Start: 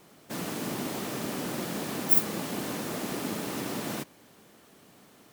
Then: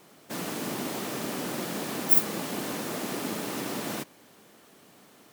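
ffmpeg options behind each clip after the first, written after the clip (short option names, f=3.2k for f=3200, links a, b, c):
-af "lowshelf=f=120:g=-8.5,volume=1.5dB"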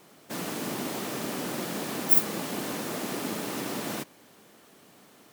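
-af anull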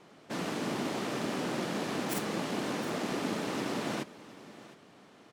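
-af "adynamicsmooth=sensitivity=5.5:basefreq=5.3k,aecho=1:1:713:0.133"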